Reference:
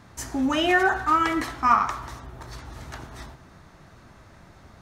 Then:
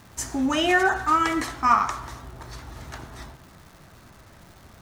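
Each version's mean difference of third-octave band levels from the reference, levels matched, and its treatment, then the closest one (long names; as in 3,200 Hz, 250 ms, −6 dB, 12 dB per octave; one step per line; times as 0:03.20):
1.5 dB: dynamic equaliser 7,600 Hz, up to +6 dB, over −48 dBFS, Q 1
surface crackle 530 per second −43 dBFS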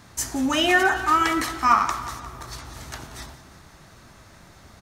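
3.5 dB: high-shelf EQ 3,300 Hz +10.5 dB
repeating echo 177 ms, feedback 59%, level −16 dB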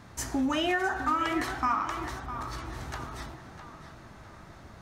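5.5 dB: downward compressor 5 to 1, threshold −25 dBFS, peak gain reduction 11 dB
tape delay 657 ms, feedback 48%, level −10 dB, low-pass 3,900 Hz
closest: first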